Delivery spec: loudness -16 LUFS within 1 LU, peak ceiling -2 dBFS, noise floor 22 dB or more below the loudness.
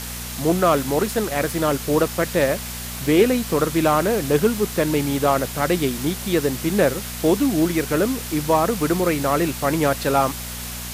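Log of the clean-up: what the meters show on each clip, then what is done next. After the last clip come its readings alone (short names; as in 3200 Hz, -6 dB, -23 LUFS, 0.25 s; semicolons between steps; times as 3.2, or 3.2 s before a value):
hum 60 Hz; harmonics up to 240 Hz; hum level -32 dBFS; noise floor -31 dBFS; noise floor target -43 dBFS; loudness -20.5 LUFS; peak -4.5 dBFS; loudness target -16.0 LUFS
-> de-hum 60 Hz, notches 4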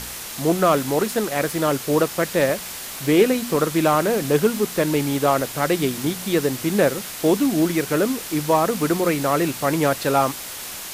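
hum none; noise floor -33 dBFS; noise floor target -43 dBFS
-> denoiser 10 dB, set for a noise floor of -33 dBFS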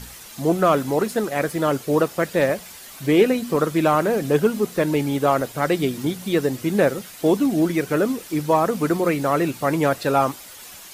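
noise floor -41 dBFS; noise floor target -43 dBFS
-> denoiser 6 dB, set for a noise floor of -41 dBFS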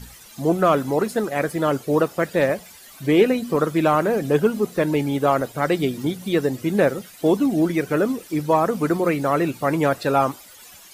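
noise floor -45 dBFS; loudness -21.0 LUFS; peak -5.0 dBFS; loudness target -16.0 LUFS
-> gain +5 dB; limiter -2 dBFS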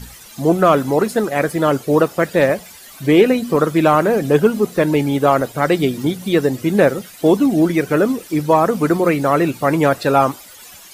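loudness -16.0 LUFS; peak -2.0 dBFS; noise floor -40 dBFS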